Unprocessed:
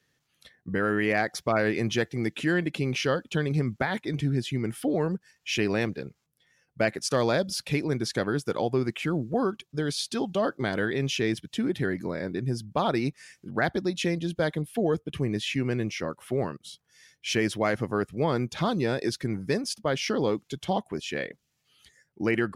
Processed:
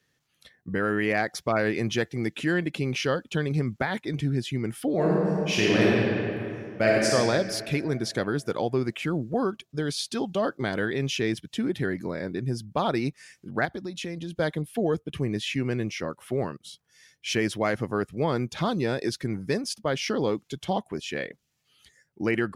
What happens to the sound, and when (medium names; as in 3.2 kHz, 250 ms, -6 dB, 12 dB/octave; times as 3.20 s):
4.93–7.11 s: reverb throw, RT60 2.6 s, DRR -5 dB
13.65–14.36 s: compression 3:1, threshold -32 dBFS